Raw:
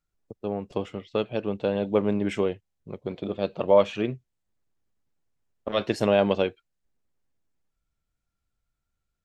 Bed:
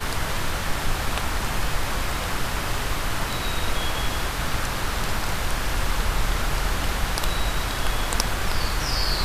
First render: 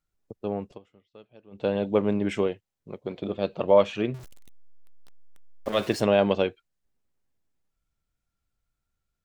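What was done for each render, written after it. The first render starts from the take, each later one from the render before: 0.64–1.66 dip -23.5 dB, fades 0.15 s; 2.47–3.16 low shelf 110 Hz -10 dB; 4.14–6.01 zero-crossing step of -37.5 dBFS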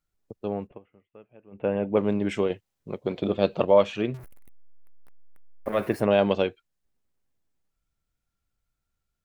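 0.67–1.97 steep low-pass 2700 Hz 48 dB/oct; 2.5–3.65 gain +5 dB; 4.17–6.11 band shelf 4800 Hz -13.5 dB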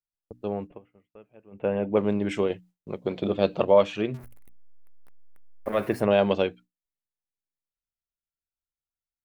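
notches 60/120/180/240/300 Hz; gate with hold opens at -49 dBFS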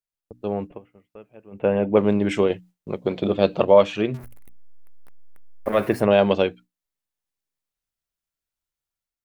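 AGC gain up to 6 dB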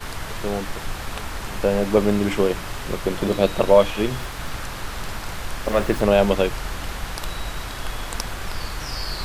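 add bed -5 dB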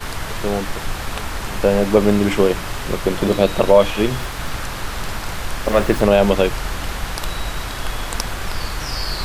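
gain +4.5 dB; limiter -1 dBFS, peak gain reduction 3 dB

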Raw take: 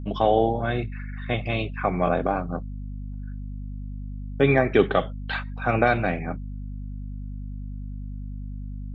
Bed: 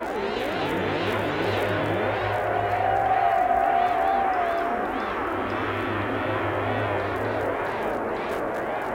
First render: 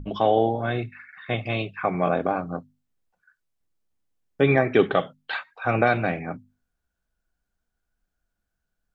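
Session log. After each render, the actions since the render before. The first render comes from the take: notches 50/100/150/200/250 Hz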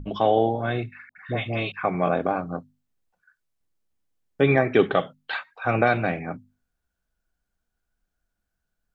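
1.09–1.72 dispersion highs, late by 80 ms, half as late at 870 Hz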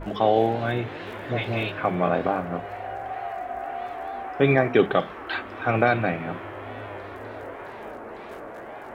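add bed -11 dB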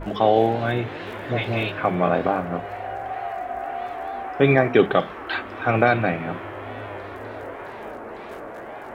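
gain +2.5 dB

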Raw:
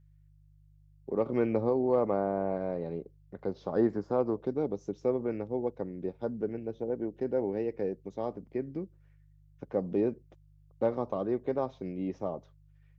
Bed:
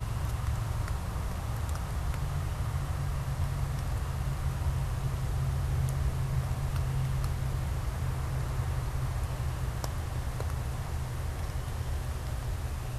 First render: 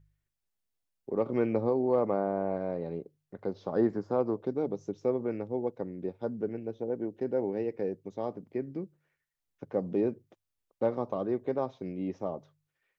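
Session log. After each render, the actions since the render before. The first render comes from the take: de-hum 50 Hz, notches 3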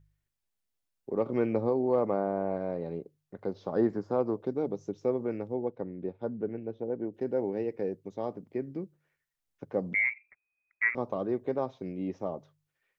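5.54–7.14 air absorption 180 m; 9.94–10.95 inverted band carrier 2500 Hz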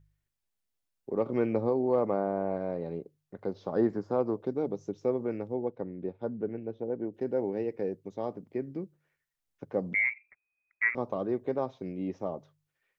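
nothing audible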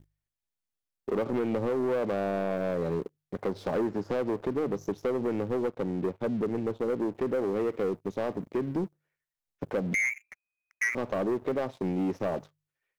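compressor, threshold -32 dBFS, peak gain reduction 11 dB; sample leveller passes 3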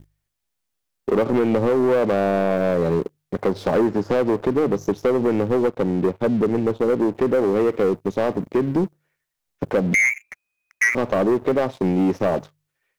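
gain +10 dB

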